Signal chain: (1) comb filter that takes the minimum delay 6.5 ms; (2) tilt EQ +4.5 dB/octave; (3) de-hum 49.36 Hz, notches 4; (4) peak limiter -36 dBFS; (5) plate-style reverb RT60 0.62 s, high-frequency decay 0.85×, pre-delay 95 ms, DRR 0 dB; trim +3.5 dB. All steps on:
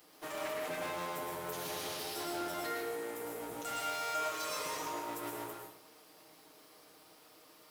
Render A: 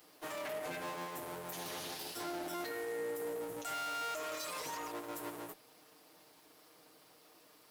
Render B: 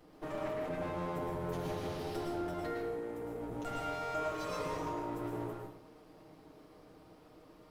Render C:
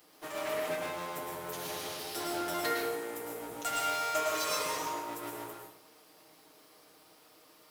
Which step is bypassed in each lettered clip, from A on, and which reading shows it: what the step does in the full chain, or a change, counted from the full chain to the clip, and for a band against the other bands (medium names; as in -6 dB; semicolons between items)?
5, crest factor change -4.5 dB; 2, 125 Hz band +14.5 dB; 4, mean gain reduction 1.5 dB